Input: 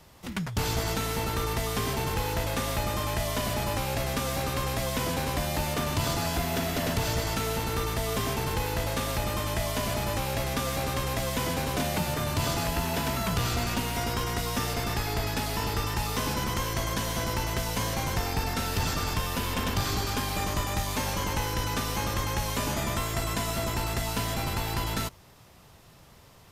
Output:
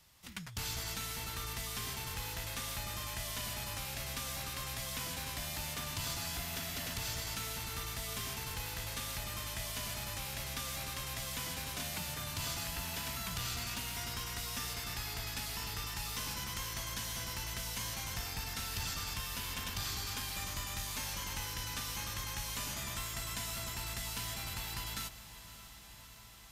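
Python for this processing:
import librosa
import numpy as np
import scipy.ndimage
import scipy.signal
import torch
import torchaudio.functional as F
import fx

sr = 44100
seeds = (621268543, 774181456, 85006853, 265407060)

y = fx.tone_stack(x, sr, knobs='5-5-5')
y = fx.echo_diffused(y, sr, ms=579, feedback_pct=76, wet_db=-15.0)
y = F.gain(torch.from_numpy(y), 1.0).numpy()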